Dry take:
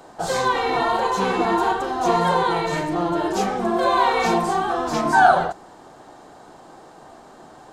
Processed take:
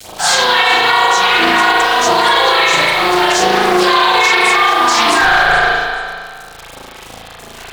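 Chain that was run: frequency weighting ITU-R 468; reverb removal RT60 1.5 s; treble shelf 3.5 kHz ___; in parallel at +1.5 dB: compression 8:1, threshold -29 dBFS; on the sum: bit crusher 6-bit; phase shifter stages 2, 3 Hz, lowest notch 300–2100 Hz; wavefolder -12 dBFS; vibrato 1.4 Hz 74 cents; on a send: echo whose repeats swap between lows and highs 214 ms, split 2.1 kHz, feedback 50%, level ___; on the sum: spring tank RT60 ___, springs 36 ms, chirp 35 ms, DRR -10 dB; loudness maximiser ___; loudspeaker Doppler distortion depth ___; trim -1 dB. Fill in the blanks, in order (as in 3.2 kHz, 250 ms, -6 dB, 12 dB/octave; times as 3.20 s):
-3.5 dB, -8.5 dB, 1.7 s, +8 dB, 0.25 ms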